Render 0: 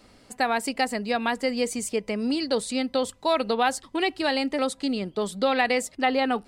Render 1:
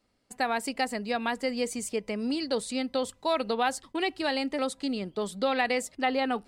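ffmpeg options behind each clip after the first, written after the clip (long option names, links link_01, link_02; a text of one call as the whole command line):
ffmpeg -i in.wav -af "agate=range=-15dB:threshold=-46dB:ratio=16:detection=peak,volume=-4dB" out.wav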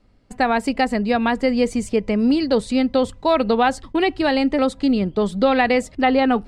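ffmpeg -i in.wav -af "aemphasis=mode=reproduction:type=bsi,volume=9dB" out.wav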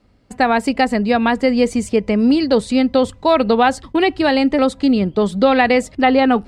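ffmpeg -i in.wav -af "highpass=42,volume=3.5dB" out.wav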